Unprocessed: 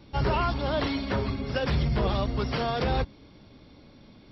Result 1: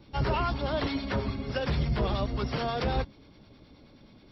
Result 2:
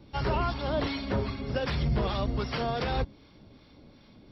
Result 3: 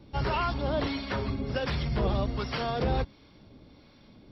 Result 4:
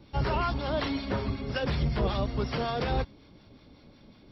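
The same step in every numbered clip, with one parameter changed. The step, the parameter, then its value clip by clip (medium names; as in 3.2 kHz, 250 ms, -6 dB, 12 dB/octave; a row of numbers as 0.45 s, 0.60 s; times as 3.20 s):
harmonic tremolo, rate: 9.4 Hz, 2.6 Hz, 1.4 Hz, 5.4 Hz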